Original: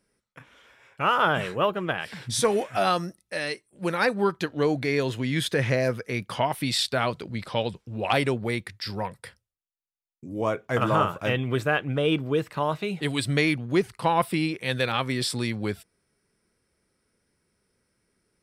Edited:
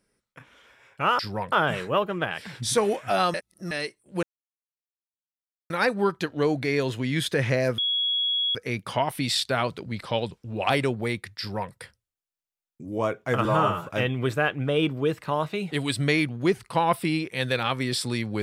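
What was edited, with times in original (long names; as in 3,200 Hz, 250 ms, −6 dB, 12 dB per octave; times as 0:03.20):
0:03.01–0:03.38: reverse
0:03.90: splice in silence 1.47 s
0:05.98: insert tone 3,340 Hz −22 dBFS 0.77 s
0:08.82–0:09.15: duplicate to 0:01.19
0:10.88–0:11.16: time-stretch 1.5×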